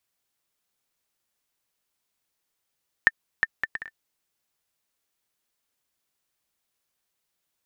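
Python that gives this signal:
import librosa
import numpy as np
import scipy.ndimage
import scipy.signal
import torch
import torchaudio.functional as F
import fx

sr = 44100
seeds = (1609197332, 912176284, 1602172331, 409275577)

y = fx.bouncing_ball(sr, first_gap_s=0.36, ratio=0.57, hz=1790.0, decay_ms=37.0, level_db=-3.5)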